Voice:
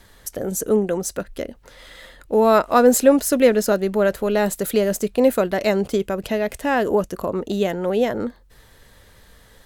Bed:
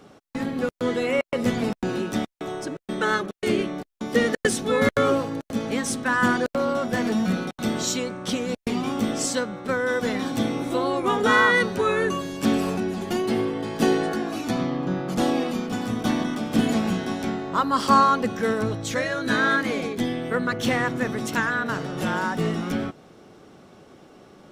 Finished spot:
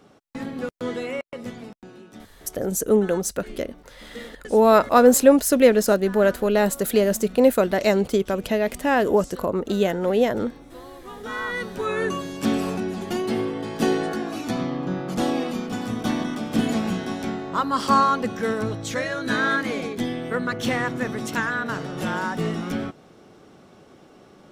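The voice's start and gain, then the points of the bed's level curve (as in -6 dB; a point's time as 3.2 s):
2.20 s, 0.0 dB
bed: 0.96 s -4 dB
1.91 s -18 dB
11.05 s -18 dB
12.05 s -1 dB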